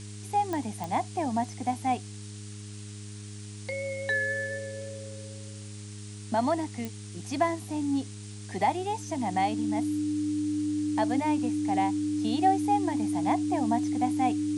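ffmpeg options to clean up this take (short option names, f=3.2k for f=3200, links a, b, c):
-af "adeclick=t=4,bandreject=f=103.4:t=h:w=4,bandreject=f=206.8:t=h:w=4,bandreject=f=310.2:t=h:w=4,bandreject=f=413.6:t=h:w=4,bandreject=f=300:w=30,afftdn=nr=30:nf=-41"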